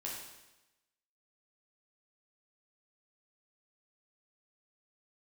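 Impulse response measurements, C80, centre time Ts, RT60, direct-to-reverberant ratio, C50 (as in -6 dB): 4.5 dB, 57 ms, 1.0 s, -4.5 dB, 1.5 dB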